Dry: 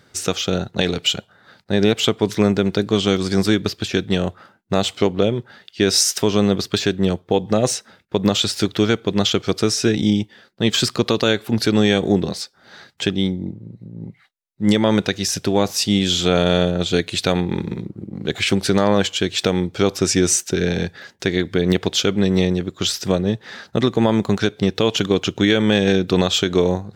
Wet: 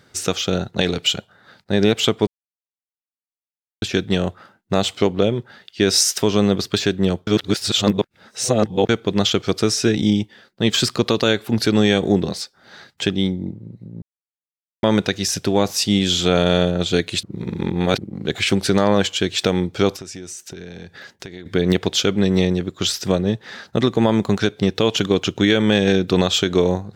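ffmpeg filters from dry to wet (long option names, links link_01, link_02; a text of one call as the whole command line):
ffmpeg -i in.wav -filter_complex "[0:a]asettb=1/sr,asplit=3[link_01][link_02][link_03];[link_01]atrim=end=19.964[link_04];[link_02]atrim=start=19.96:end=21.46,asetpts=PTS-STARTPTS,afade=type=in:duration=0.004:curve=qsin,afade=type=out:start_time=1.496:duration=0.004:curve=qsin,acompressor=threshold=-34dB:ratio=4:attack=3.2:release=140:knee=1:detection=peak[link_05];[link_03]atrim=start=21.456[link_06];[link_04][link_05]acrossfade=duration=0.004:curve1=hsin:curve2=qsin[link_07];[link_07][link_06]acrossfade=duration=0.004:curve1=qsin:curve2=hsin,asplit=9[link_08][link_09][link_10][link_11][link_12][link_13][link_14][link_15][link_16];[link_08]atrim=end=2.27,asetpts=PTS-STARTPTS,afade=type=out:start_time=2.266:duration=0.004:curve=hsin[link_17];[link_09]atrim=start=2.27:end=3.82,asetpts=PTS-STARTPTS,volume=0[link_18];[link_10]atrim=start=3.82:end=7.272,asetpts=PTS-STARTPTS,afade=type=in:duration=0.004:curve=hsin[link_19];[link_11]atrim=start=7.268:end=8.892,asetpts=PTS-STARTPTS,areverse[link_20];[link_12]atrim=start=8.888:end=14.02,asetpts=PTS-STARTPTS,afade=type=out:start_time=5.128:duration=0.004:curve=hsin[link_21];[link_13]atrim=start=14.02:end=14.83,asetpts=PTS-STARTPTS,volume=0[link_22];[link_14]atrim=start=14.83:end=17.232,asetpts=PTS-STARTPTS,afade=type=in:duration=0.004:curve=hsin[link_23];[link_15]atrim=start=17.228:end=17.982,asetpts=PTS-STARTPTS,areverse[link_24];[link_16]atrim=start=17.978[link_25];[link_17][link_18][link_19]concat=n=3:v=0:a=1[link_26];[link_26][link_20]acrossfade=duration=0.004:curve1=hsin:curve2=hsin[link_27];[link_21][link_22][link_23]concat=n=3:v=0:a=1[link_28];[link_27][link_28]acrossfade=duration=0.004:curve1=hsin:curve2=hsin[link_29];[link_29][link_24]acrossfade=duration=0.004:curve1=hsin:curve2=hsin[link_30];[link_30][link_25]acrossfade=duration=0.004:curve1=hsin:curve2=hsin" out.wav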